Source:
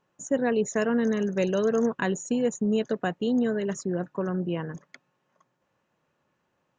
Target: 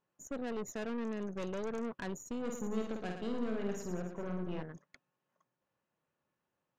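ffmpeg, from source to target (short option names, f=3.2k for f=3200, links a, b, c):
-filter_complex "[0:a]aeval=exprs='(tanh(22.4*val(0)+0.7)-tanh(0.7))/22.4':c=same,asettb=1/sr,asplit=3[a][b][c];[a]atrim=end=2.414[d];[b]atrim=start=2.41:end=4.63,asetpts=PTS-STARTPTS,afade=t=in:d=0.004:c=qsin,afade=t=out:st=2.216:d=0.004:c=qsin,aecho=1:1:50|112.5|190.6|288.3|410.4:0.631|0.398|0.251|0.158|0.1,atrim=end_sample=97902[e];[c]atrim=start=4.626[f];[d][e]acrossfade=d=0.004:c1=hsin:c2=qsin[g];[g][f]acrossfade=d=0.004:c1=qsin:c2=hsin,volume=-8dB"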